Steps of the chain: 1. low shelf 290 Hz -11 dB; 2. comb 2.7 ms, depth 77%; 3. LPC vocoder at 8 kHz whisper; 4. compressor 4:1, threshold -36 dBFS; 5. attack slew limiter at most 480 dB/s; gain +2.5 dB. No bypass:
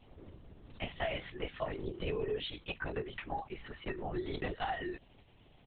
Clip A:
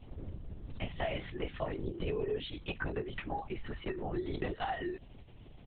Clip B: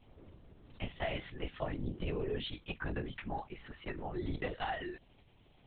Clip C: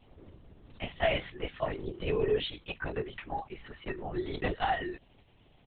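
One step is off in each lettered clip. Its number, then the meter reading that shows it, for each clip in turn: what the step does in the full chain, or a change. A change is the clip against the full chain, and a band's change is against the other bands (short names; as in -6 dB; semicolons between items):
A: 1, 125 Hz band +3.0 dB; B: 2, 125 Hz band +4.5 dB; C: 4, mean gain reduction 2.0 dB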